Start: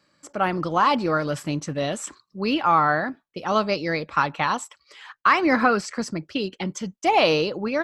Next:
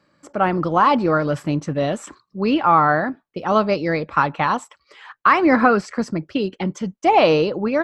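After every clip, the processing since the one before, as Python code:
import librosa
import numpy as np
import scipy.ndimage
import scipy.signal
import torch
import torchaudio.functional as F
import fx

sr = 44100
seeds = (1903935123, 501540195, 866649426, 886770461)

y = fx.high_shelf(x, sr, hz=2700.0, db=-12.0)
y = y * librosa.db_to_amplitude(5.5)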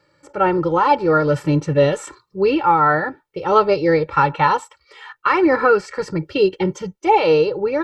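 y = x + 0.85 * np.pad(x, (int(2.2 * sr / 1000.0), 0))[:len(x)]
y = fx.hpss(y, sr, part='harmonic', gain_db=8)
y = fx.rider(y, sr, range_db=5, speed_s=0.5)
y = y * librosa.db_to_amplitude(-6.0)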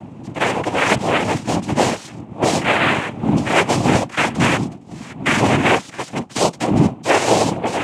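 y = fx.spec_flatten(x, sr, power=0.65)
y = fx.dmg_wind(y, sr, seeds[0], corner_hz=160.0, level_db=-18.0)
y = fx.noise_vocoder(y, sr, seeds[1], bands=4)
y = y * librosa.db_to_amplitude(-1.5)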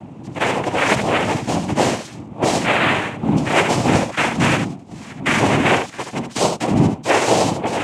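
y = x + 10.0 ** (-7.5 / 20.0) * np.pad(x, (int(73 * sr / 1000.0), 0))[:len(x)]
y = y * librosa.db_to_amplitude(-1.0)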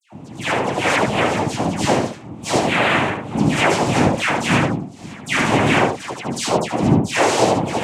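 y = fx.dispersion(x, sr, late='lows', ms=119.0, hz=1800.0)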